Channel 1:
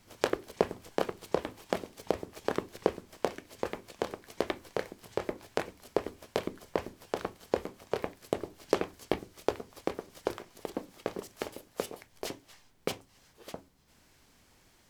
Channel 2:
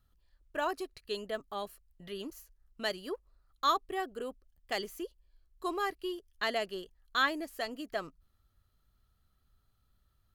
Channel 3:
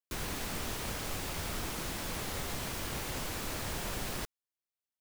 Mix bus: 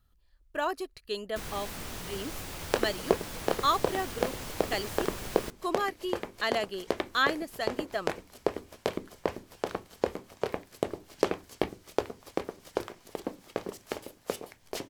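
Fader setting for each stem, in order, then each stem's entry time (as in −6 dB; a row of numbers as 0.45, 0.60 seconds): +1.0, +2.5, −2.5 decibels; 2.50, 0.00, 1.25 seconds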